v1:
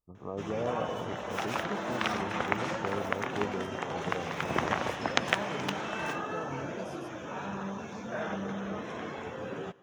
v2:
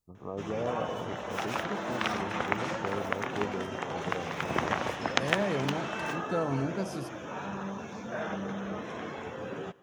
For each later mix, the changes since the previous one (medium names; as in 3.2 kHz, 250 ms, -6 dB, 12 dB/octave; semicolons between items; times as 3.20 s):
second voice +10.0 dB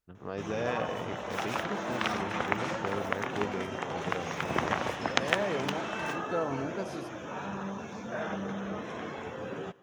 first voice: remove brick-wall FIR low-pass 1.3 kHz; second voice: add tone controls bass -9 dB, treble -7 dB